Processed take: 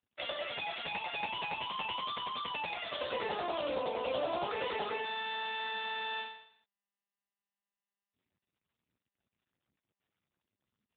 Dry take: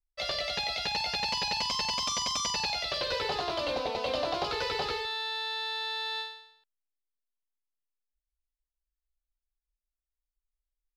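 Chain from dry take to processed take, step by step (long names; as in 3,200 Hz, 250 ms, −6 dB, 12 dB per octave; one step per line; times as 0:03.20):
0:03.68–0:04.96: hum removal 364.8 Hz, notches 4
AMR narrowband 6.7 kbit/s 8,000 Hz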